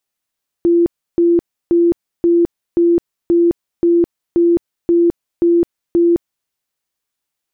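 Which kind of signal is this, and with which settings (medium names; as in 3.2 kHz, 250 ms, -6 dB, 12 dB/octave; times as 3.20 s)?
tone bursts 342 Hz, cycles 72, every 0.53 s, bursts 11, -8.5 dBFS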